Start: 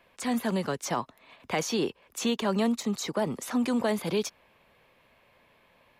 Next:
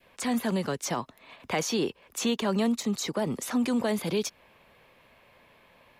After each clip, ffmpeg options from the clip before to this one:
ffmpeg -i in.wav -filter_complex "[0:a]adynamicequalizer=threshold=0.00708:dfrequency=1000:dqfactor=0.74:tfrequency=1000:tqfactor=0.74:attack=5:release=100:ratio=0.375:range=2:mode=cutabove:tftype=bell,asplit=2[link_01][link_02];[link_02]alimiter=level_in=5dB:limit=-24dB:level=0:latency=1:release=126,volume=-5dB,volume=-1.5dB[link_03];[link_01][link_03]amix=inputs=2:normalize=0,volume=-1.5dB" out.wav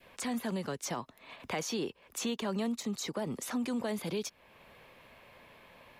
ffmpeg -i in.wav -af "acompressor=threshold=-50dB:ratio=1.5,volume=2dB" out.wav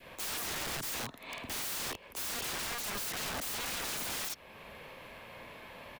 ffmpeg -i in.wav -filter_complex "[0:a]asplit=2[link_01][link_02];[link_02]adelay=50,volume=-2.5dB[link_03];[link_01][link_03]amix=inputs=2:normalize=0,aeval=exprs='(mod(79.4*val(0)+1,2)-1)/79.4':channel_layout=same,volume=5.5dB" out.wav

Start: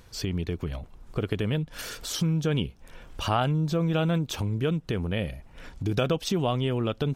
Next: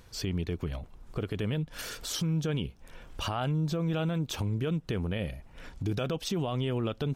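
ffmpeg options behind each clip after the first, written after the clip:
ffmpeg -i in.wav -af "alimiter=limit=-20.5dB:level=0:latency=1:release=38,volume=-2dB" out.wav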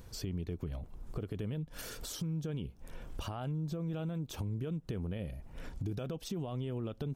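ffmpeg -i in.wav -af "acompressor=threshold=-41dB:ratio=3,equalizer=frequency=2600:width=0.32:gain=-8,volume=4dB" out.wav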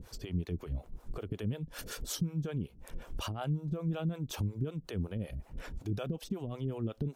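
ffmpeg -i in.wav -filter_complex "[0:a]acrossover=split=410[link_01][link_02];[link_01]aeval=exprs='val(0)*(1-1/2+1/2*cos(2*PI*5.4*n/s))':channel_layout=same[link_03];[link_02]aeval=exprs='val(0)*(1-1/2-1/2*cos(2*PI*5.4*n/s))':channel_layout=same[link_04];[link_03][link_04]amix=inputs=2:normalize=0,volume=6.5dB" out.wav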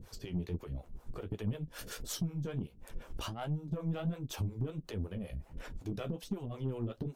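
ffmpeg -i in.wav -af "flanger=delay=8.6:depth=8.3:regen=-35:speed=1.4:shape=sinusoidal,aeval=exprs='0.0531*(cos(1*acos(clip(val(0)/0.0531,-1,1)))-cos(1*PI/2))+0.00266*(cos(6*acos(clip(val(0)/0.0531,-1,1)))-cos(6*PI/2))':channel_layout=same,volume=2dB" out.wav

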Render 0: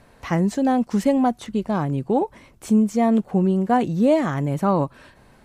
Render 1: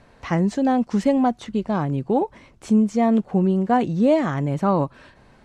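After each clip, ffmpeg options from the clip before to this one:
ffmpeg -i in.wav -af "lowpass=6800" out.wav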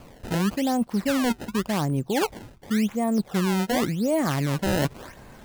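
ffmpeg -i in.wav -af "areverse,acompressor=threshold=-28dB:ratio=5,areverse,acrusher=samples=22:mix=1:aa=0.000001:lfo=1:lforange=35.2:lforate=0.9,volume=6dB" out.wav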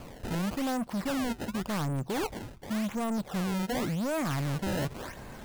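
ffmpeg -i in.wav -af "asoftclip=type=tanh:threshold=-30.5dB,volume=2dB" out.wav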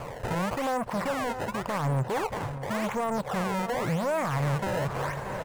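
ffmpeg -i in.wav -filter_complex "[0:a]equalizer=frequency=125:width_type=o:width=1:gain=10,equalizer=frequency=250:width_type=o:width=1:gain=-6,equalizer=frequency=500:width_type=o:width=1:gain=10,equalizer=frequency=1000:width_type=o:width=1:gain=10,equalizer=frequency=2000:width_type=o:width=1:gain=7,equalizer=frequency=8000:width_type=o:width=1:gain=4,asplit=2[link_01][link_02];[link_02]adelay=630,lowpass=frequency=4300:poles=1,volume=-14dB,asplit=2[link_03][link_04];[link_04]adelay=630,lowpass=frequency=4300:poles=1,volume=0.43,asplit=2[link_05][link_06];[link_06]adelay=630,lowpass=frequency=4300:poles=1,volume=0.43,asplit=2[link_07][link_08];[link_08]adelay=630,lowpass=frequency=4300:poles=1,volume=0.43[link_09];[link_01][link_03][link_05][link_07][link_09]amix=inputs=5:normalize=0,alimiter=limit=-21dB:level=0:latency=1:release=54" out.wav

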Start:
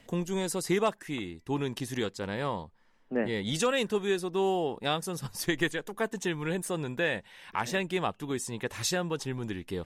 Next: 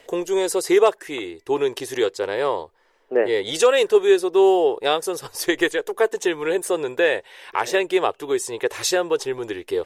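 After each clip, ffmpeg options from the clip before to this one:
ffmpeg -i in.wav -af "lowshelf=frequency=290:width_type=q:width=3:gain=-11.5,volume=7.5dB" out.wav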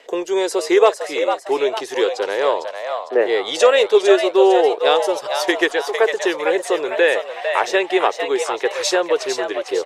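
ffmpeg -i in.wav -filter_complex "[0:a]acrossover=split=280 7000:gain=0.1 1 0.224[link_01][link_02][link_03];[link_01][link_02][link_03]amix=inputs=3:normalize=0,asplit=6[link_04][link_05][link_06][link_07][link_08][link_09];[link_05]adelay=453,afreqshift=110,volume=-7dB[link_10];[link_06]adelay=906,afreqshift=220,volume=-14.5dB[link_11];[link_07]adelay=1359,afreqshift=330,volume=-22.1dB[link_12];[link_08]adelay=1812,afreqshift=440,volume=-29.6dB[link_13];[link_09]adelay=2265,afreqshift=550,volume=-37.1dB[link_14];[link_04][link_10][link_11][link_12][link_13][link_14]amix=inputs=6:normalize=0,volume=3.5dB" out.wav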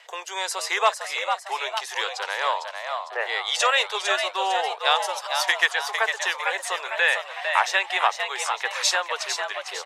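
ffmpeg -i in.wav -af "highpass=frequency=820:width=0.5412,highpass=frequency=820:width=1.3066" out.wav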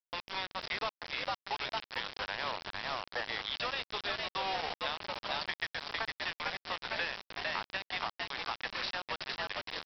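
ffmpeg -i in.wav -af "acompressor=threshold=-27dB:ratio=12,aresample=11025,acrusher=bits=4:mix=0:aa=0.000001,aresample=44100,volume=-6dB" out.wav

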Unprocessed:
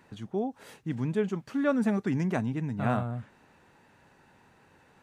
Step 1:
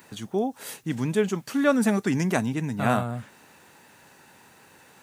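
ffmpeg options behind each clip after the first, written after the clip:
ffmpeg -i in.wav -af "highpass=frequency=150:poles=1,aemphasis=mode=production:type=75kf,volume=5.5dB" out.wav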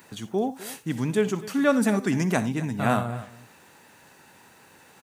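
ffmpeg -i in.wav -af "aecho=1:1:61|84|255:0.141|0.1|0.126" out.wav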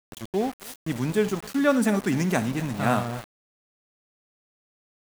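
ffmpeg -i in.wav -af "aeval=exprs='val(0)*gte(abs(val(0)),0.0237)':channel_layout=same" out.wav

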